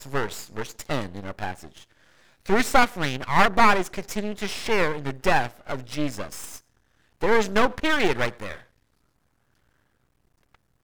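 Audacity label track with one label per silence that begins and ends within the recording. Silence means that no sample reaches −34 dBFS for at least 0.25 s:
1.810000	2.460000	silence
6.580000	7.210000	silence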